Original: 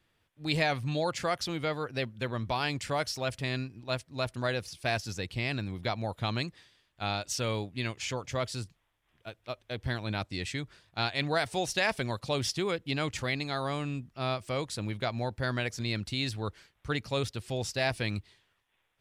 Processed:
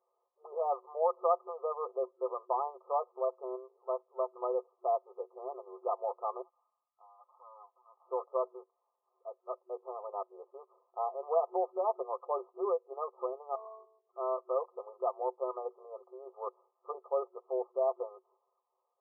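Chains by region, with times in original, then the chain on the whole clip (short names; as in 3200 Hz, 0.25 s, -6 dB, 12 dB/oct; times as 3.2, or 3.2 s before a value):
6.42–8.07 minimum comb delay 0.52 ms + HPF 830 Hz 24 dB/oct + compressor, threshold -45 dBFS
13.55–14.13 compressor 4:1, threshold -45 dBFS + monotone LPC vocoder at 8 kHz 220 Hz + comb 2.8 ms, depth 69%
whole clip: FFT band-pass 370–1300 Hz; comb 5.8 ms, depth 61%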